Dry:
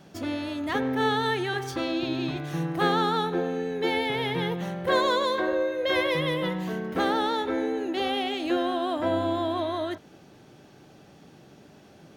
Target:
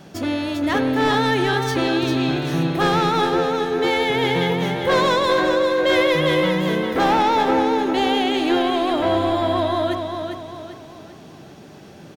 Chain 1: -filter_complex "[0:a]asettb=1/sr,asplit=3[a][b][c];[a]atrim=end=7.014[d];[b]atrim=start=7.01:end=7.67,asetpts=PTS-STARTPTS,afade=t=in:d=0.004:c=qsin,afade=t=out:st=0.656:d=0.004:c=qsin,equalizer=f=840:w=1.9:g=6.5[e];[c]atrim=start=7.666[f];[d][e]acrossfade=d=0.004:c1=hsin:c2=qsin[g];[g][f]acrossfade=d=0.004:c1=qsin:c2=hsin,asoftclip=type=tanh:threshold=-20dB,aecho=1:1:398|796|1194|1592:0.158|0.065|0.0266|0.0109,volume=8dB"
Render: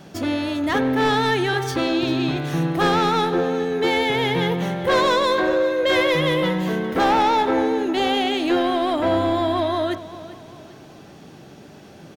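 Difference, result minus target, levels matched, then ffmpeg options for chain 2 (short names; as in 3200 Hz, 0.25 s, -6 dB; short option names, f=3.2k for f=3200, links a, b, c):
echo-to-direct -10 dB
-filter_complex "[0:a]asettb=1/sr,asplit=3[a][b][c];[a]atrim=end=7.014[d];[b]atrim=start=7.01:end=7.67,asetpts=PTS-STARTPTS,afade=t=in:d=0.004:c=qsin,afade=t=out:st=0.656:d=0.004:c=qsin,equalizer=f=840:w=1.9:g=6.5[e];[c]atrim=start=7.666[f];[d][e]acrossfade=d=0.004:c1=hsin:c2=qsin[g];[g][f]acrossfade=d=0.004:c1=qsin:c2=hsin,asoftclip=type=tanh:threshold=-20dB,aecho=1:1:398|796|1194|1592|1990:0.501|0.205|0.0842|0.0345|0.0142,volume=8dB"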